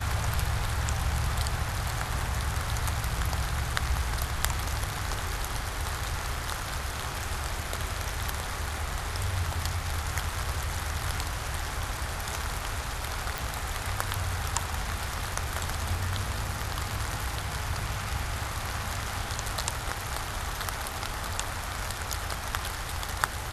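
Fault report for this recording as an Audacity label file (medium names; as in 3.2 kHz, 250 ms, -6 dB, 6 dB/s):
13.380000	13.380000	pop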